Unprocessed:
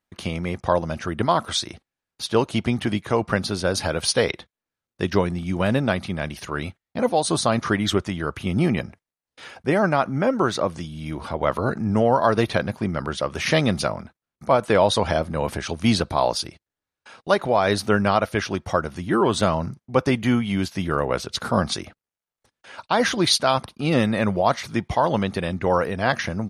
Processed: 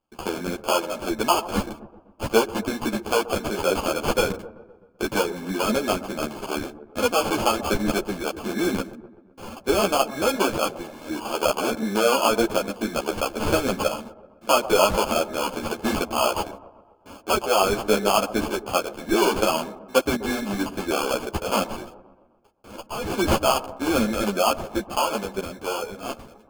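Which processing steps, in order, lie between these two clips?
fade out at the end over 2.20 s; high-pass 250 Hz 24 dB/octave; in parallel at +1 dB: compression, threshold -27 dBFS, peak gain reduction 14 dB; 21.66–23.10 s: on the sum: valve stage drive 24 dB, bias 0.45; sample-and-hold 23×; on a send: feedback echo behind a low-pass 128 ms, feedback 54%, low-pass 990 Hz, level -14.5 dB; on the sum: three-phase chorus

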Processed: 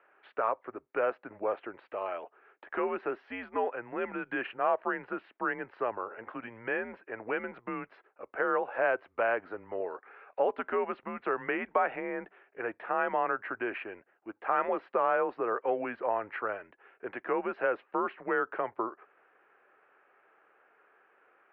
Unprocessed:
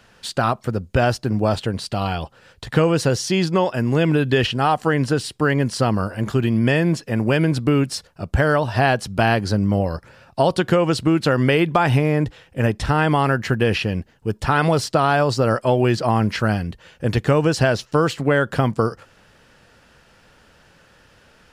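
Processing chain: mistuned SSB -110 Hz 530–2300 Hz; 9.73–10.58 s: tape noise reduction on one side only encoder only; trim -8.5 dB

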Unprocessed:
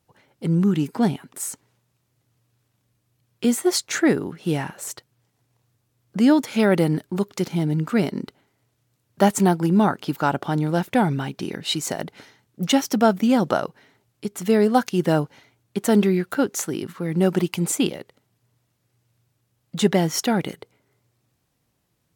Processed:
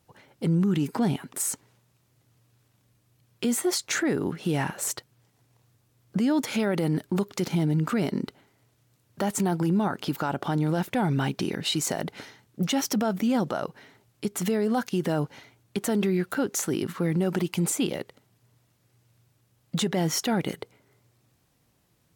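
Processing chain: compression 1.5:1, threshold -24 dBFS, peak gain reduction 5 dB; peak limiter -21 dBFS, peak gain reduction 12 dB; trim +3.5 dB

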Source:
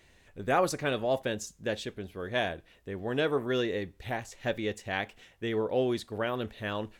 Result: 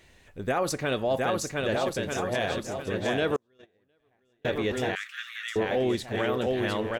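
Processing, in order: on a send: bouncing-ball echo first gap 710 ms, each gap 0.75×, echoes 5; 3.36–4.45 s: on the sum: gate -22 dBFS, range -42 dB; peak limiter -21 dBFS, peak gain reduction 7.5 dB; 4.95–5.56 s: steep high-pass 1.2 kHz 96 dB/octave; trim +3.5 dB

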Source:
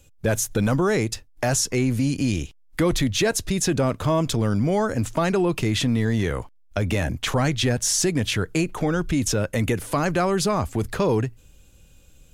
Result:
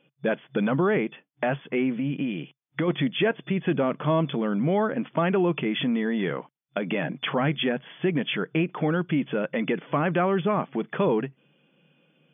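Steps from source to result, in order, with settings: 1.96–2.88 s: compression, threshold -21 dBFS, peak gain reduction 5 dB; FFT band-pass 130–3500 Hz; trim -1.5 dB

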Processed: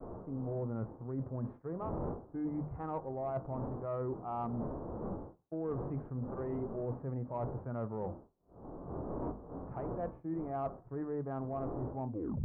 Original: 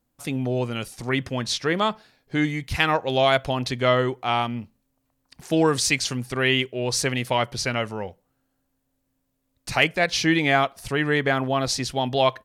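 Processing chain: tape stop on the ending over 0.36 s; wind noise 470 Hz -32 dBFS; steep low-pass 1.2 kHz 36 dB/octave; hum notches 50/100/150/200/250 Hz; harmonic-percussive split percussive -12 dB; reverse; compression 16:1, threshold -36 dBFS, peak gain reduction 21 dB; reverse; expander -47 dBFS; in parallel at -7.5 dB: saturation -33.5 dBFS, distortion -18 dB; on the sum: trim -1 dB

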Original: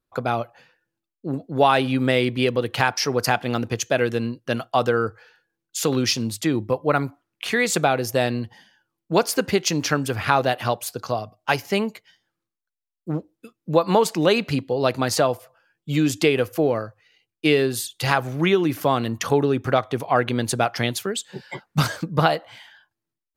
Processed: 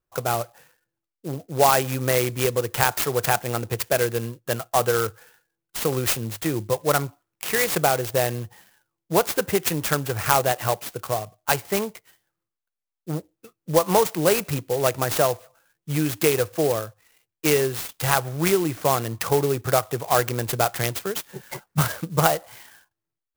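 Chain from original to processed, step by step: low-pass 10 kHz; peaking EQ 250 Hz -11 dB 0.48 oct; sampling jitter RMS 0.072 ms

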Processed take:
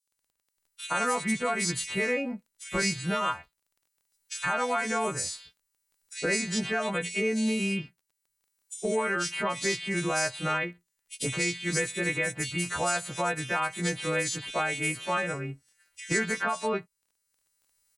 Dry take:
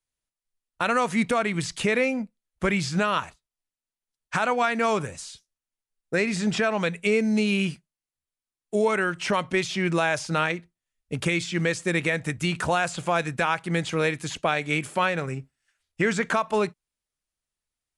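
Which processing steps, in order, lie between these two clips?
partials quantised in pitch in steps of 2 st; recorder AGC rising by 11 dB/s; bands offset in time highs, lows 120 ms, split 3.2 kHz; crackle 18 per s -48 dBFS; trim -5 dB

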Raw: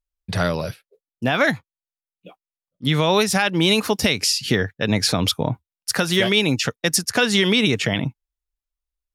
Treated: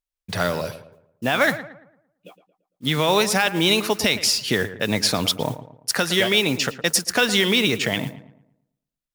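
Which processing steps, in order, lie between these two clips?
bass shelf 180 Hz -9 dB; modulation noise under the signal 19 dB; filtered feedback delay 113 ms, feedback 41%, low-pass 2 kHz, level -12.5 dB

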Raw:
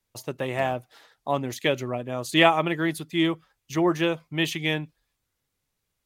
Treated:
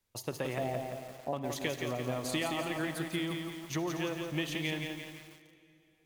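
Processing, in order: 0.58–1.33 s: steep low-pass 760 Hz 36 dB/octave; compression 16:1, threshold -29 dBFS, peak gain reduction 17.5 dB; reverberation RT60 3.0 s, pre-delay 48 ms, DRR 10 dB; bit-crushed delay 171 ms, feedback 55%, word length 8-bit, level -4.5 dB; trim -2 dB

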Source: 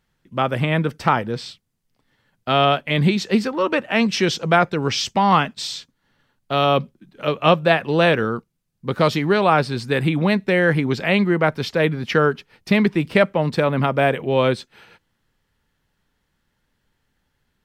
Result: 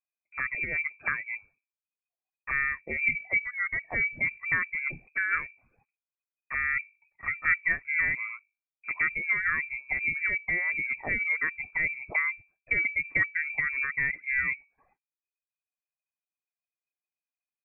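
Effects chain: gate with hold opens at -38 dBFS; reverb removal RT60 0.9 s; hum notches 50/100/150/200/250 Hz; touch-sensitive flanger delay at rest 2.2 ms, full sweep at -18 dBFS; frequency inversion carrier 2.5 kHz; trim -8 dB

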